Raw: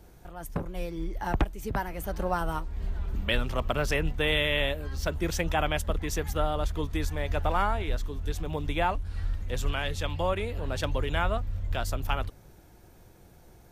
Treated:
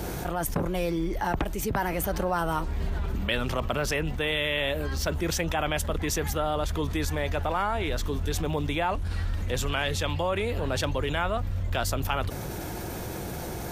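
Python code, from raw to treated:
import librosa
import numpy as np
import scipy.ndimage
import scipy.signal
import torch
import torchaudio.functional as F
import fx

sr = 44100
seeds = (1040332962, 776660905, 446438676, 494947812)

y = fx.rider(x, sr, range_db=10, speed_s=0.5)
y = fx.highpass(y, sr, hz=95.0, slope=6)
y = fx.env_flatten(y, sr, amount_pct=70)
y = F.gain(torch.from_numpy(y), -2.0).numpy()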